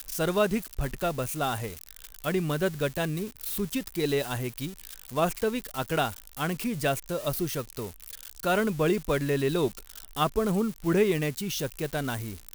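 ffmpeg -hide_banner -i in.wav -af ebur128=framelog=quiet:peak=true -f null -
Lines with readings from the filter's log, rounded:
Integrated loudness:
  I:         -29.1 LUFS
  Threshold: -39.3 LUFS
Loudness range:
  LRA:         3.3 LU
  Threshold: -49.4 LUFS
  LRA low:   -30.6 LUFS
  LRA high:  -27.3 LUFS
True peak:
  Peak:      -11.3 dBFS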